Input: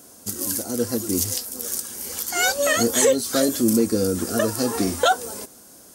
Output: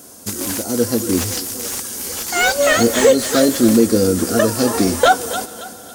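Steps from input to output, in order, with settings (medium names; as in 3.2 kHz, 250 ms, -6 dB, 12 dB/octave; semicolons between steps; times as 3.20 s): thinning echo 277 ms, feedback 35%, level -12 dB; reverberation RT60 5.5 s, pre-delay 3 ms, DRR 19.5 dB; slew-rate limiter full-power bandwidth 300 Hz; trim +6.5 dB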